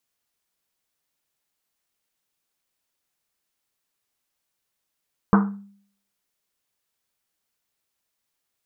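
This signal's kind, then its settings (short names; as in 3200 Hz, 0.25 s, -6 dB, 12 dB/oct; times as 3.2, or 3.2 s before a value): Risset drum, pitch 200 Hz, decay 0.59 s, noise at 1100 Hz, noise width 760 Hz, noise 25%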